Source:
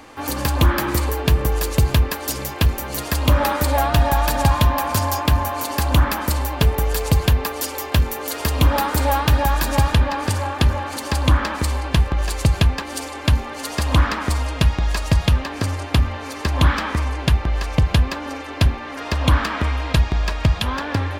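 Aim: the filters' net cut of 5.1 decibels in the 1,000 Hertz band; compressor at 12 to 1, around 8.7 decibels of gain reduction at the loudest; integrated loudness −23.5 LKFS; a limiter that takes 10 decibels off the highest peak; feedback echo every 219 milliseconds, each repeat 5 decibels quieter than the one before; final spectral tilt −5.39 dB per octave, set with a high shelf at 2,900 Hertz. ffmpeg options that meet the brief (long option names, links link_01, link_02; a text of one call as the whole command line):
ffmpeg -i in.wav -af "equalizer=frequency=1000:width_type=o:gain=-5.5,highshelf=frequency=2900:gain=-7,acompressor=threshold=-19dB:ratio=12,alimiter=limit=-18dB:level=0:latency=1,aecho=1:1:219|438|657|876|1095|1314|1533:0.562|0.315|0.176|0.0988|0.0553|0.031|0.0173,volume=3.5dB" out.wav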